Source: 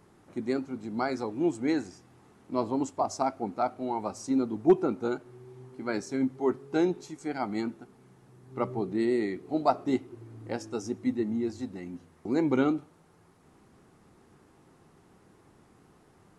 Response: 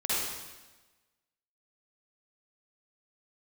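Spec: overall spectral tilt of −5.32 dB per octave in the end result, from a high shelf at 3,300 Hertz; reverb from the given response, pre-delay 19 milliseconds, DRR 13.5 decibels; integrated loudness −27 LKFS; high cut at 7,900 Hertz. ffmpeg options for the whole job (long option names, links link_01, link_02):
-filter_complex "[0:a]lowpass=7900,highshelf=frequency=3300:gain=6.5,asplit=2[link_01][link_02];[1:a]atrim=start_sample=2205,adelay=19[link_03];[link_02][link_03]afir=irnorm=-1:irlink=0,volume=-23dB[link_04];[link_01][link_04]amix=inputs=2:normalize=0,volume=3dB"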